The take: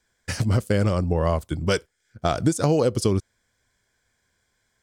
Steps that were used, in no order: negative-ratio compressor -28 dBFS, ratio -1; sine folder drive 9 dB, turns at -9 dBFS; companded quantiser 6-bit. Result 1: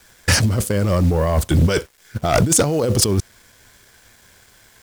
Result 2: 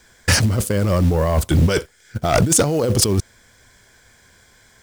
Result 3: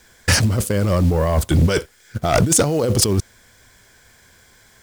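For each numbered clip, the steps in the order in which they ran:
companded quantiser > negative-ratio compressor > sine folder; negative-ratio compressor > sine folder > companded quantiser; negative-ratio compressor > companded quantiser > sine folder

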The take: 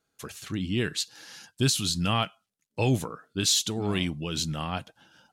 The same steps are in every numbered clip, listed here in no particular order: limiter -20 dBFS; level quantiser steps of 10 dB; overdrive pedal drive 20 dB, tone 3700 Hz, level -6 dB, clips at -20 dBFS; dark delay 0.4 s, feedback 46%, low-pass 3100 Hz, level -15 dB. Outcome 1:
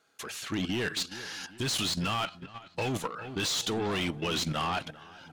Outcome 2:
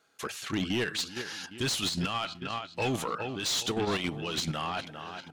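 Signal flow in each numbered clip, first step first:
overdrive pedal > dark delay > level quantiser > limiter; dark delay > limiter > level quantiser > overdrive pedal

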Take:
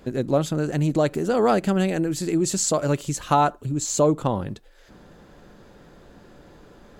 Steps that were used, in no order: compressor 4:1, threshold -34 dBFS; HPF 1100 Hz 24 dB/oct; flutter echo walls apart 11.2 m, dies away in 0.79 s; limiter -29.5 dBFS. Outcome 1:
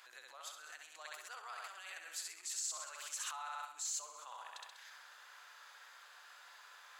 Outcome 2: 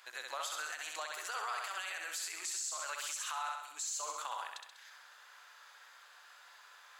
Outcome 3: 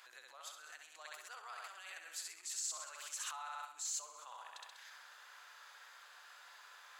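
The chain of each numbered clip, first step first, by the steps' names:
flutter echo > limiter > HPF > compressor; HPF > compressor > flutter echo > limiter; flutter echo > limiter > compressor > HPF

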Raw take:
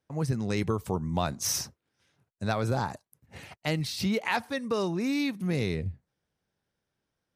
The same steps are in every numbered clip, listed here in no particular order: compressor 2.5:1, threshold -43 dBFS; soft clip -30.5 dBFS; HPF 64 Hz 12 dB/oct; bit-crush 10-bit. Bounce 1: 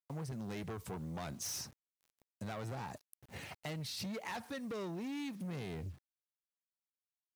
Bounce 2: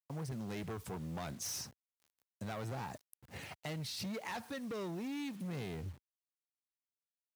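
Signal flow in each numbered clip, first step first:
soft clip > HPF > bit-crush > compressor; soft clip > compressor > bit-crush > HPF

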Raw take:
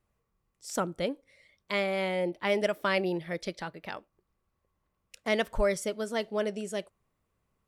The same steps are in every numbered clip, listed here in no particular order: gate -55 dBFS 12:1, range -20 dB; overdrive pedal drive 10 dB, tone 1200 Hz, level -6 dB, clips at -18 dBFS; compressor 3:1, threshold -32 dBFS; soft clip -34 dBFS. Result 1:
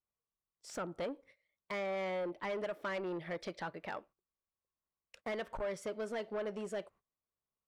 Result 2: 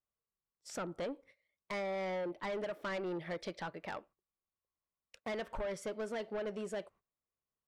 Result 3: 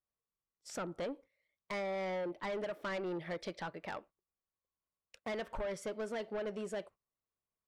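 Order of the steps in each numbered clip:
gate > compressor > soft clip > overdrive pedal; overdrive pedal > gate > compressor > soft clip; overdrive pedal > compressor > soft clip > gate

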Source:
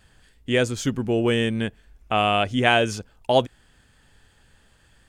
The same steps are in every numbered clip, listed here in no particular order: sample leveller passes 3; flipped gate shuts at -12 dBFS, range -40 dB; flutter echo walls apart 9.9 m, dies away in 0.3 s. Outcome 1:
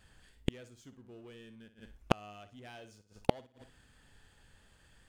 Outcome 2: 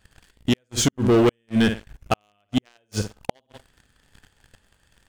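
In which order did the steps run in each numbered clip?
sample leveller > flutter echo > flipped gate; flutter echo > flipped gate > sample leveller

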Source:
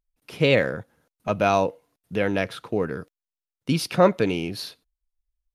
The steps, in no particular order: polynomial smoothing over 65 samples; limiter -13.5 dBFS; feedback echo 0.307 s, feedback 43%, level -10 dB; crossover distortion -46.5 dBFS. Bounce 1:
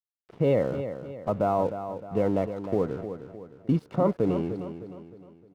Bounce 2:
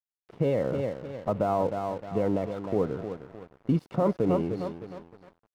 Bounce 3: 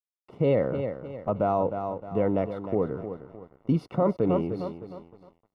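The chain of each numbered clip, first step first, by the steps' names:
polynomial smoothing > crossover distortion > limiter > feedback echo; feedback echo > limiter > polynomial smoothing > crossover distortion; feedback echo > crossover distortion > polynomial smoothing > limiter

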